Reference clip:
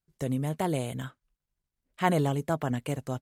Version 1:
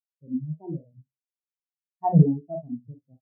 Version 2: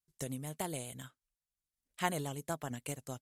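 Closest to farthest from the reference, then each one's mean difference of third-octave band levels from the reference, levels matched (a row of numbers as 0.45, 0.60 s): 2, 1; 4.5, 21.5 dB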